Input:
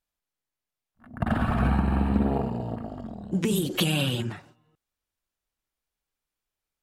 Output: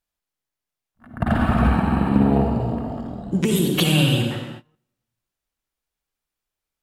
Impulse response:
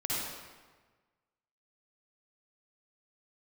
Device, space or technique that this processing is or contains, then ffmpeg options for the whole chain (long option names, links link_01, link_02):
keyed gated reverb: -filter_complex "[0:a]asplit=3[link_01][link_02][link_03];[1:a]atrim=start_sample=2205[link_04];[link_02][link_04]afir=irnorm=-1:irlink=0[link_05];[link_03]apad=whole_len=300939[link_06];[link_05][link_06]sidechaingate=range=-29dB:threshold=-59dB:ratio=16:detection=peak,volume=-6dB[link_07];[link_01][link_07]amix=inputs=2:normalize=0,volume=1.5dB"